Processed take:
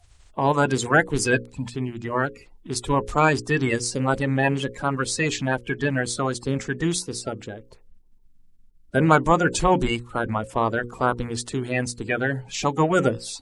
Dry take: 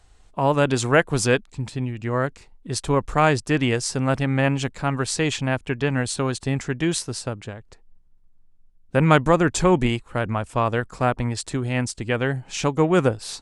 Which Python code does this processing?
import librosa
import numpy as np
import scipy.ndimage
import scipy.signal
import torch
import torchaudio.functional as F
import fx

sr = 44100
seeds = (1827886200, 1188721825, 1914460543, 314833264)

y = fx.spec_quant(x, sr, step_db=30)
y = fx.hum_notches(y, sr, base_hz=60, count=9)